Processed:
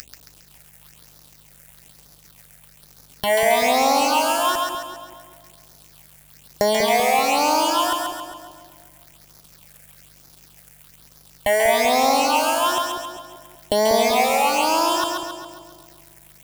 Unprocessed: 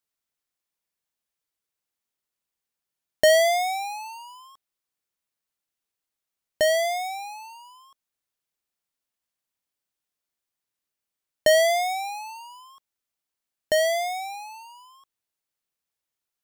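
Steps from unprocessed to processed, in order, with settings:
sub-harmonics by changed cycles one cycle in 3, muted
upward compression, threshold −25 dBFS
leveller curve on the samples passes 3
downward compressor 6 to 1, threshold −29 dBFS, peak gain reduction 17 dB
leveller curve on the samples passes 3
all-pass phaser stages 6, 1.1 Hz, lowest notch 250–3,000 Hz
mains hum 50 Hz, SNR 32 dB
echo with a time of its own for lows and highs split 730 Hz, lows 193 ms, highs 136 ms, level −3 dB

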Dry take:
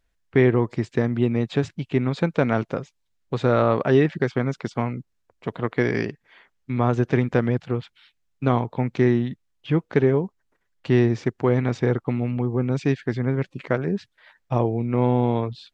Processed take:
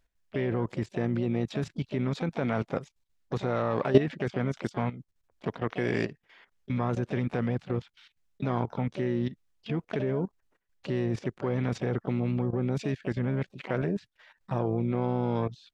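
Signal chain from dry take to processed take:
pitch-shifted copies added +7 semitones −12 dB
output level in coarse steps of 14 dB

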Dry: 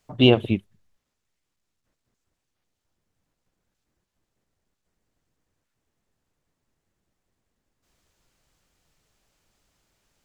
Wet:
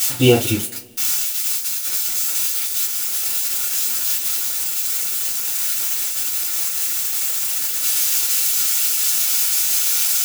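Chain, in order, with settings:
spike at every zero crossing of −12.5 dBFS
coupled-rooms reverb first 0.21 s, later 1.8 s, from −28 dB, DRR −7 dB
level −5.5 dB

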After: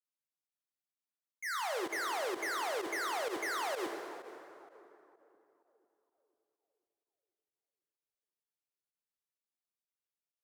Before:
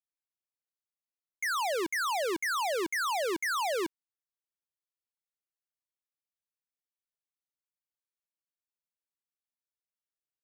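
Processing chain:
high-pass filter 94 Hz 24 dB per octave
on a send: tape delay 495 ms, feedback 53%, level −17 dB, low-pass 1,100 Hz
on the sum: harmonic generator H 5 −31 dB, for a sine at −25 dBFS
dense smooth reverb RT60 2.8 s, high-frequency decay 0.65×, DRR 3 dB
fake sidechain pumping 128 BPM, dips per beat 1, −12 dB, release 77 ms
level −7 dB

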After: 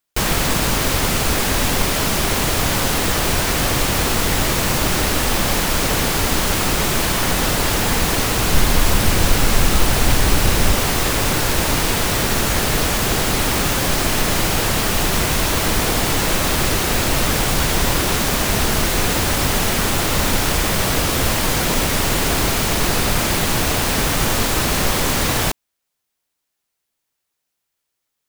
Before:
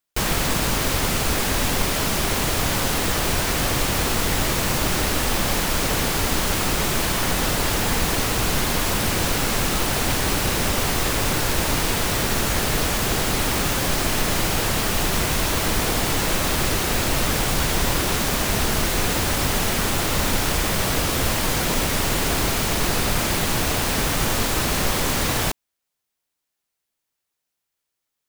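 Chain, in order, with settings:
0:08.51–0:10.77: low-shelf EQ 74 Hz +10 dB
level +3.5 dB

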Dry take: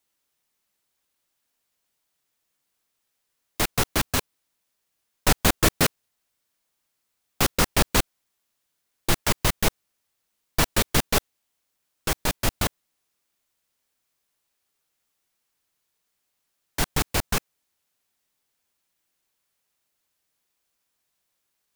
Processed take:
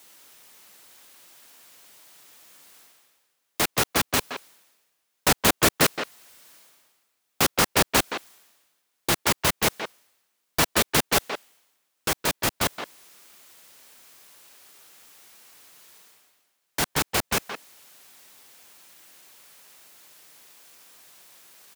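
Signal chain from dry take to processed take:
high-pass filter 210 Hz 6 dB per octave
reversed playback
upward compression, threshold −34 dBFS
reversed playback
far-end echo of a speakerphone 170 ms, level −7 dB
level +1.5 dB

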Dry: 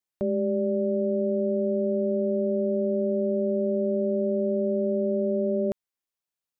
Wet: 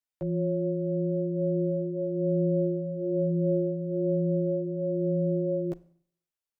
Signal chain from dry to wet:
multi-voice chorus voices 4, 0.36 Hz, delay 13 ms, depth 3 ms
frequency shifter −38 Hz
four-comb reverb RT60 0.62 s, combs from 32 ms, DRR 19 dB
level −1.5 dB

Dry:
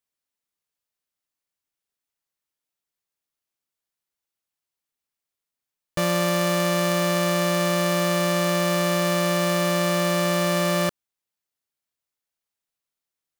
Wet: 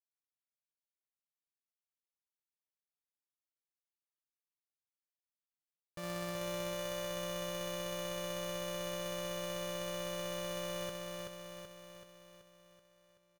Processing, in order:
noise gate −18 dBFS, range −25 dB
on a send: repeating echo 380 ms, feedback 56%, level −3.5 dB
on the sum: level +4 dB

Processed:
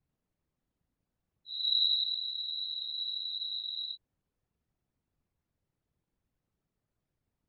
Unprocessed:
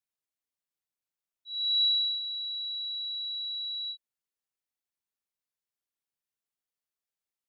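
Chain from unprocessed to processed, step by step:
spectral tilt −5.5 dB per octave
random phases in short frames
level +8.5 dB

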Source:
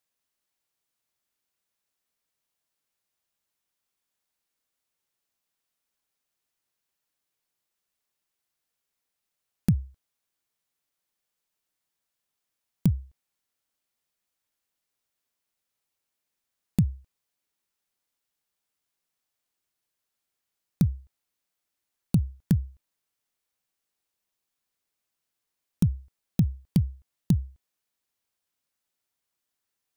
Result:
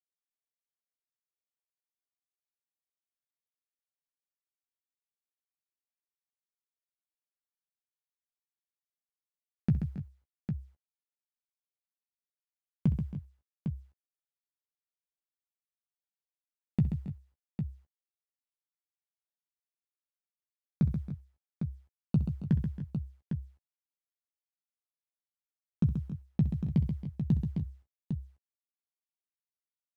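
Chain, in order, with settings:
low-pass filter 2,200 Hz 12 dB per octave
low-shelf EQ 63 Hz −11 dB
in parallel at +1 dB: brickwall limiter −20 dBFS, peak gain reduction 6.5 dB
on the sum: bit reduction 11 bits
double-tracking delay 14 ms −9 dB
on a send: multi-tap delay 65/132/273/294/804 ms −15/−8/−15.5/−14.5/−7.5 dB
on the sum: level −7.5 dB

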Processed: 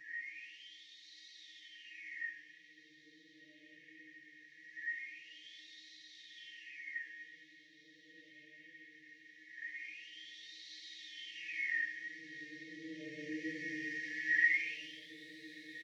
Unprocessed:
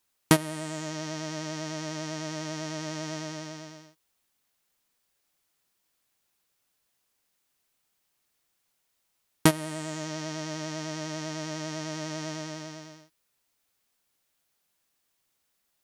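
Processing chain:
flat-topped bell 1,300 Hz +13.5 dB
compressor whose output falls as the input rises −41 dBFS, ratio −0.5
extreme stretch with random phases 6.8×, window 0.10 s, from 0:10.89
LFO wah 0.21 Hz 620–3,900 Hz, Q 12
linear-phase brick-wall band-stop 570–1,700 Hz
double-tracking delay 16 ms −5 dB
feedback delay with all-pass diffusion 1,930 ms, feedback 60%, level −12 dB
level +16.5 dB

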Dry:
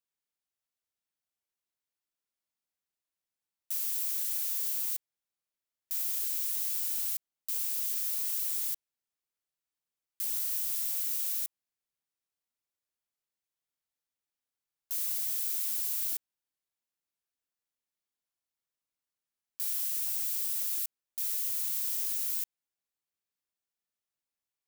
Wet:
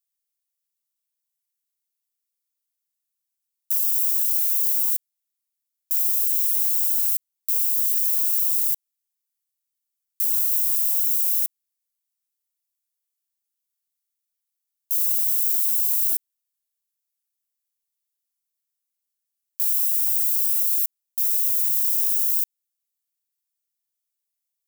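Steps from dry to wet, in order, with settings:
first-order pre-emphasis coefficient 0.9
level +6.5 dB

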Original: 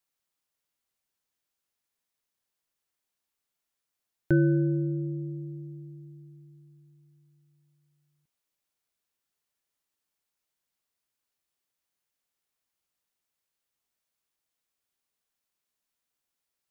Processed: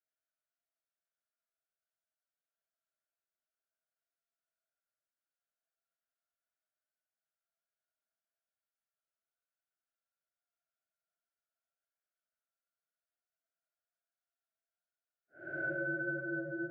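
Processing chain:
harmonic generator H 4 −34 dB, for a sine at −11.5 dBFS
extreme stretch with random phases 6.8×, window 0.10 s, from 0:02.01
pair of resonant band-passes 970 Hz, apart 1.1 octaves

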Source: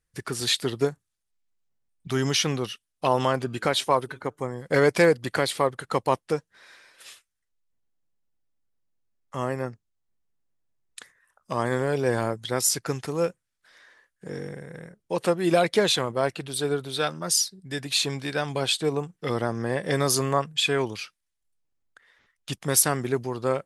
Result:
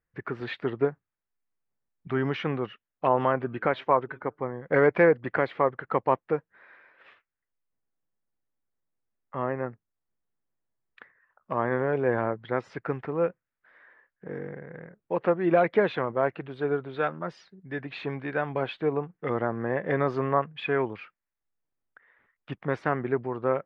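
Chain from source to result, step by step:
low-pass filter 2,100 Hz 24 dB per octave
low-shelf EQ 130 Hz −8 dB

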